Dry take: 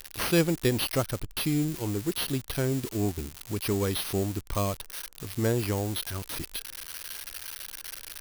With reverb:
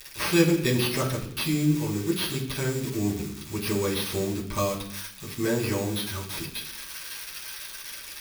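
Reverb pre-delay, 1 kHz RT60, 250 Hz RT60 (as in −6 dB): 5 ms, 0.65 s, 0.85 s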